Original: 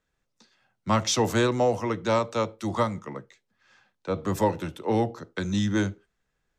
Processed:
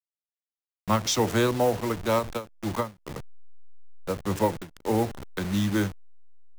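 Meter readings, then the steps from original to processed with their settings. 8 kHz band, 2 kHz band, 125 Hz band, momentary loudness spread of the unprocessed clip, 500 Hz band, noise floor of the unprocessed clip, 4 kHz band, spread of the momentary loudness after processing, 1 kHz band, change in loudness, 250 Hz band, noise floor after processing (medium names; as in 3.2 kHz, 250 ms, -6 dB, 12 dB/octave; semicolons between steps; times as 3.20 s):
0.0 dB, -1.0 dB, -0.5 dB, 12 LU, -1.0 dB, -78 dBFS, -0.5 dB, 12 LU, -1.5 dB, -0.5 dB, -0.5 dB, under -85 dBFS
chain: send-on-delta sampling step -30.5 dBFS; endings held to a fixed fall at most 220 dB/s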